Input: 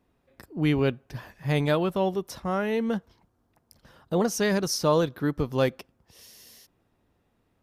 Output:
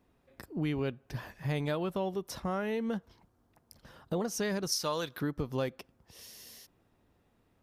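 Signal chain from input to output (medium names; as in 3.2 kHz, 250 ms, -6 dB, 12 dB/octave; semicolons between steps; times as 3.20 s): 4.72–5.21 s: tilt shelf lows -7.5 dB, about 870 Hz; compression 3:1, threshold -32 dBFS, peak gain reduction 10.5 dB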